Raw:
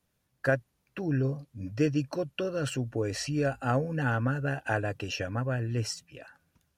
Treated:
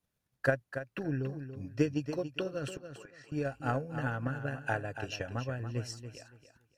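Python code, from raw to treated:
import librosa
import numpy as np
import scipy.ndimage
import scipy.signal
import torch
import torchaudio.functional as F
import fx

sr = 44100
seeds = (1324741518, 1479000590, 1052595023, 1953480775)

y = fx.transient(x, sr, attack_db=8, sustain_db=-2)
y = fx.bandpass_q(y, sr, hz=1500.0, q=2.8, at=(2.77, 3.32))
y = fx.echo_feedback(y, sr, ms=283, feedback_pct=22, wet_db=-10)
y = y * 10.0 ** (-8.0 / 20.0)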